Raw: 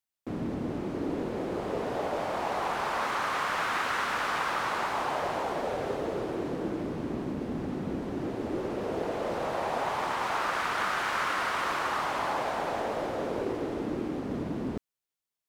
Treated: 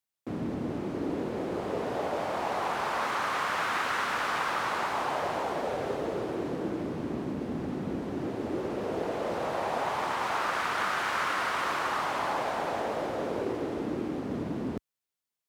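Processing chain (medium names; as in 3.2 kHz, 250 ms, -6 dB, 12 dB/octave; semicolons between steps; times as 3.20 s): high-pass 61 Hz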